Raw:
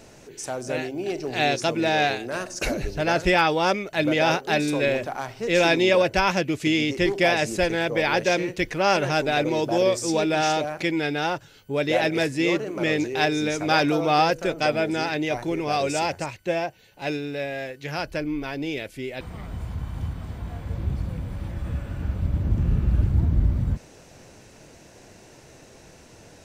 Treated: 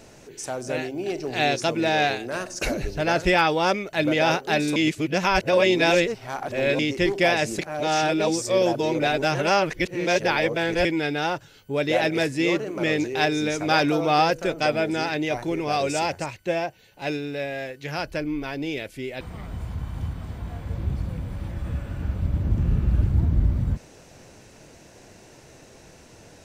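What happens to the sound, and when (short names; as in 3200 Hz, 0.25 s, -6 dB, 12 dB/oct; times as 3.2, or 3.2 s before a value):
4.76–6.79 reverse
7.59–10.85 reverse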